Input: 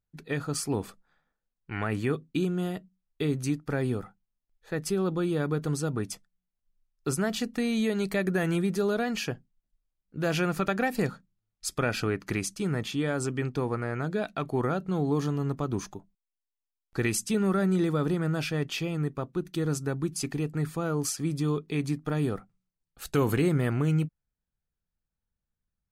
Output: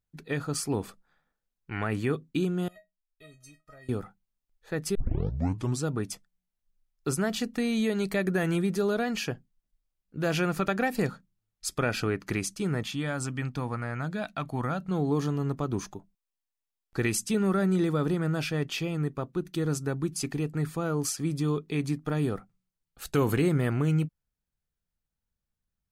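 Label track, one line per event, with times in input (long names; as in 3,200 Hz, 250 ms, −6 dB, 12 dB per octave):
2.680000	3.890000	tuned comb filter 630 Hz, decay 0.16 s, mix 100%
4.950000	4.950000	tape start 0.89 s
12.830000	14.910000	parametric band 400 Hz −11.5 dB 0.63 octaves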